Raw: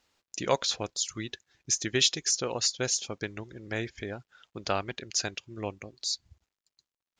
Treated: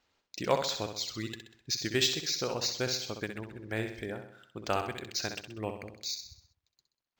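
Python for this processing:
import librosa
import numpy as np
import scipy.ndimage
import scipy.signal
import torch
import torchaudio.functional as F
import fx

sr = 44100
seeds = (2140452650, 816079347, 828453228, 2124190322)

y = fx.echo_feedback(x, sr, ms=64, feedback_pct=49, wet_db=-7.5)
y = np.interp(np.arange(len(y)), np.arange(len(y))[::4], y[::4])
y = y * 10.0 ** (-1.5 / 20.0)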